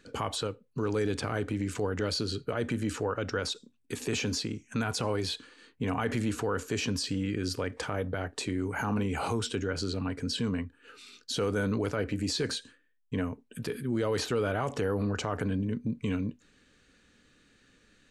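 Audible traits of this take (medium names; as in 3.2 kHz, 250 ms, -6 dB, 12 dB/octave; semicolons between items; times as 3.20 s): noise floor -66 dBFS; spectral tilt -5.0 dB/octave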